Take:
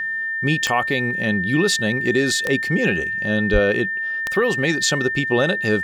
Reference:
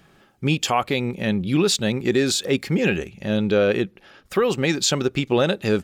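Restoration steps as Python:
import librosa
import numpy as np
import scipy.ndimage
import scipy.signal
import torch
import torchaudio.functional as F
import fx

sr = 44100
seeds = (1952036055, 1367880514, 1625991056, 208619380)

y = fx.fix_declick_ar(x, sr, threshold=10.0)
y = fx.notch(y, sr, hz=1800.0, q=30.0)
y = fx.highpass(y, sr, hz=140.0, slope=24, at=(3.52, 3.64), fade=0.02)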